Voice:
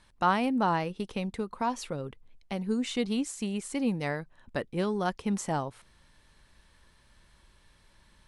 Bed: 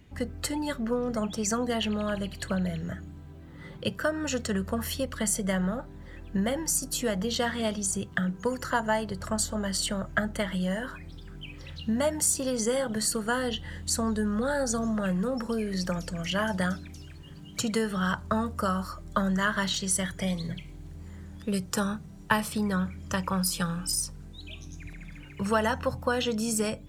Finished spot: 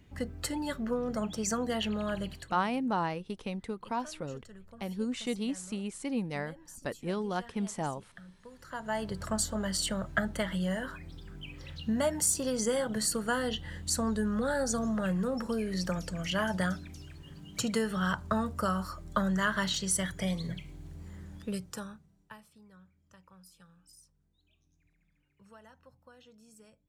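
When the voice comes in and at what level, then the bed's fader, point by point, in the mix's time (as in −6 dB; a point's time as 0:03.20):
2.30 s, −4.0 dB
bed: 0:02.32 −3.5 dB
0:02.62 −23 dB
0:08.48 −23 dB
0:09.05 −2.5 dB
0:21.36 −2.5 dB
0:22.52 −29.5 dB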